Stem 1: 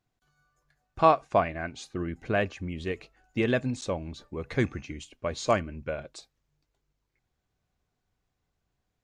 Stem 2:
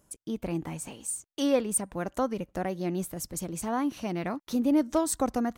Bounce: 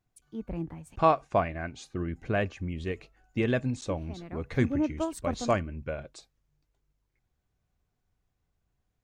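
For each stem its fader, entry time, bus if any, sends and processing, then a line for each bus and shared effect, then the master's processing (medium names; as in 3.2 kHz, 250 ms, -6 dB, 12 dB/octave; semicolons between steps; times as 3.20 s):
-2.5 dB, 0.00 s, no send, peaking EQ 4.2 kHz -2 dB
+1.5 dB, 0.05 s, muted 0.96–3.90 s, no send, tone controls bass 0 dB, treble -12 dB; three bands expanded up and down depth 100%; auto duck -11 dB, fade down 1.65 s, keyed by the first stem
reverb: none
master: bass shelf 140 Hz +7 dB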